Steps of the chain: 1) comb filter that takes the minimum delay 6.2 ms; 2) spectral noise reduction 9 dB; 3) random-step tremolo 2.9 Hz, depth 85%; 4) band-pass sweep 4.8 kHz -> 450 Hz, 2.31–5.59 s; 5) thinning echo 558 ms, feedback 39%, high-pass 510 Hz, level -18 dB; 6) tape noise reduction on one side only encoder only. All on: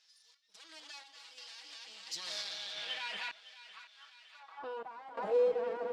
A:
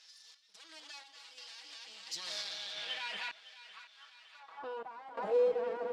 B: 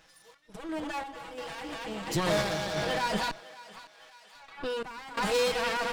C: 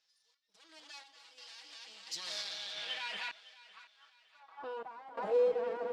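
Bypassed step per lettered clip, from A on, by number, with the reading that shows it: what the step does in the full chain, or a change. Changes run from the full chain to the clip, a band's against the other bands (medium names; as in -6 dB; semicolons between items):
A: 2, momentary loudness spread change +2 LU; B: 4, 250 Hz band +12.0 dB; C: 6, momentary loudness spread change +2 LU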